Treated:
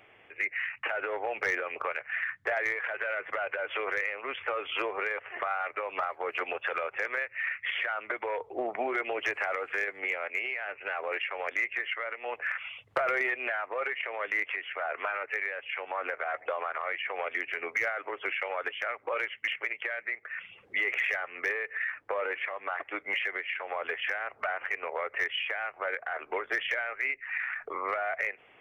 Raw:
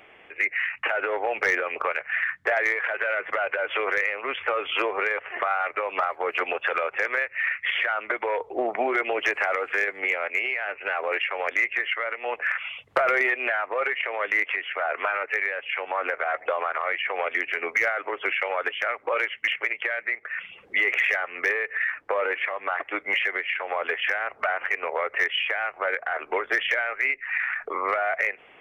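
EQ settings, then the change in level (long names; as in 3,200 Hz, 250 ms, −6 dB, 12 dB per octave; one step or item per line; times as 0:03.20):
parametric band 110 Hz +10 dB 0.31 octaves
−6.5 dB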